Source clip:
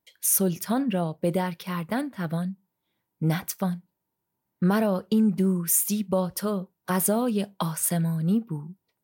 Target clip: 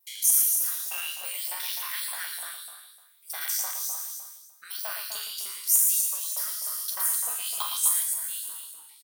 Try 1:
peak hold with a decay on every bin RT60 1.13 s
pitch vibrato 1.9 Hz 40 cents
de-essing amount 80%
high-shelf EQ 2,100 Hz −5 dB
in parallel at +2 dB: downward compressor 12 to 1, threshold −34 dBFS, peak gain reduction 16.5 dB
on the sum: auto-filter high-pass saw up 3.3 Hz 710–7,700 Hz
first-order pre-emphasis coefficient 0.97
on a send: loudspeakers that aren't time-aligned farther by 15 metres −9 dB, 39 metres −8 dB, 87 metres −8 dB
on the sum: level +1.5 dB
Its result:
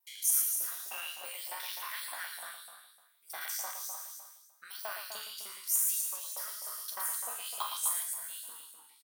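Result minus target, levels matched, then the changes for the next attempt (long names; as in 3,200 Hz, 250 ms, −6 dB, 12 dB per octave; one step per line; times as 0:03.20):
2,000 Hz band +4.0 dB
change: high-shelf EQ 2,100 Hz +5 dB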